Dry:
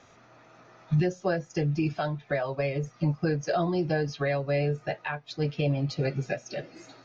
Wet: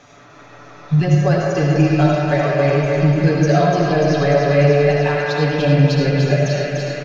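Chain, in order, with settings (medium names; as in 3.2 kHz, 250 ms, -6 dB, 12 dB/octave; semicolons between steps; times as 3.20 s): comb 6.9 ms, depth 58%; in parallel at -8 dB: saturation -31 dBFS, distortion -6 dB; on the sum: thinning echo 295 ms, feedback 78%, high-pass 760 Hz, level -5 dB; reverberation RT60 2.5 s, pre-delay 35 ms, DRR -2 dB; trim +5 dB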